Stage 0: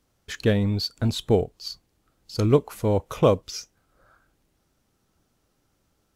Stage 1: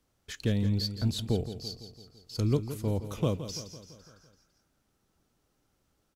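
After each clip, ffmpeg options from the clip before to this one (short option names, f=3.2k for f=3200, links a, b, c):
-filter_complex "[0:a]acrossover=split=290|3000[a][b][c];[b]acompressor=threshold=-49dB:ratio=1.5[d];[a][d][c]amix=inputs=3:normalize=0,asplit=2[e][f];[f]aecho=0:1:168|336|504|672|840|1008:0.266|0.152|0.0864|0.0493|0.0281|0.016[g];[e][g]amix=inputs=2:normalize=0,volume=-4.5dB"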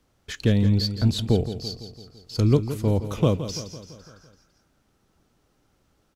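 -af "highshelf=f=6.5k:g=-7,volume=8dB"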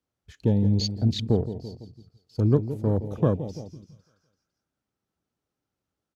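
-af "highpass=67,afwtdn=0.0251,volume=-1.5dB"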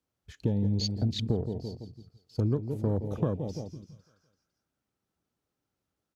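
-af "acompressor=threshold=-24dB:ratio=6"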